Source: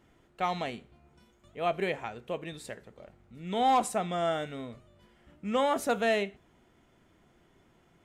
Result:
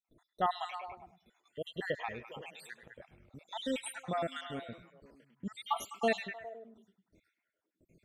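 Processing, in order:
time-frequency cells dropped at random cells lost 71%
noise gate with hold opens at −57 dBFS
echo through a band-pass that steps 102 ms, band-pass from 2,900 Hz, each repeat −0.7 octaves, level −4.5 dB

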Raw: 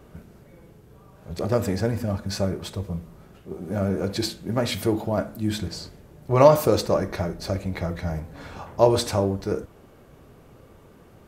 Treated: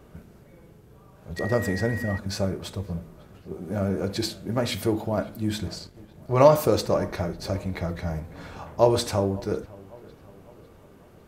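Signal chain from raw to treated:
delay with a low-pass on its return 552 ms, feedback 49%, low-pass 3,100 Hz, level −22 dB
0:01.36–0:02.17: steady tone 1,900 Hz −32 dBFS
0:05.73–0:06.38: transient designer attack −2 dB, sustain −8 dB
level −1.5 dB

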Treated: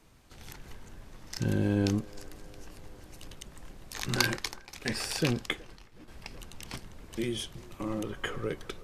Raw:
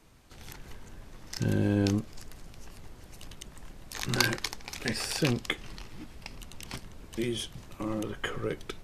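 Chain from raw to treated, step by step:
delay with a band-pass on its return 372 ms, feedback 68%, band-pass 790 Hz, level −17 dB
0:04.27–0:06.08: downward expander −34 dBFS
level −1 dB

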